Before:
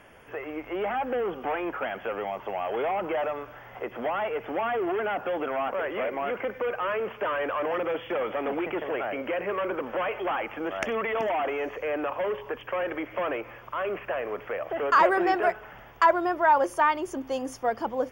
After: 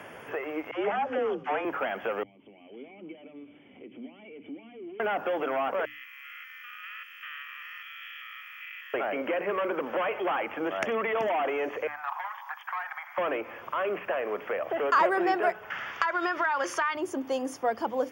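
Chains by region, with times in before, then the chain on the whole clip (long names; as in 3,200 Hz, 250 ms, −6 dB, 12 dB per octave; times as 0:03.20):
0:00.71–0:01.65: low-pass filter 8,800 Hz 24 dB per octave + downward expander −32 dBFS + all-pass dispersion lows, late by 90 ms, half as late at 420 Hz
0:02.23–0:05.00: downward compressor 2 to 1, threshold −39 dBFS + formant resonators in series i
0:05.85–0:08.94: spectrum averaged block by block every 200 ms + Bessel high-pass filter 2,900 Hz, order 8 + comb filter 1.6 ms, depth 49%
0:11.87–0:13.18: Butterworth high-pass 770 Hz 72 dB per octave + parametric band 2,800 Hz −13.5 dB 0.51 octaves + saturating transformer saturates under 580 Hz
0:15.70–0:16.95: flat-topped bell 2,800 Hz +14 dB 2.9 octaves + downward compressor, threshold −23 dBFS
whole clip: high-pass filter 85 Hz 24 dB per octave; mains-hum notches 60/120/180/240/300 Hz; multiband upward and downward compressor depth 40%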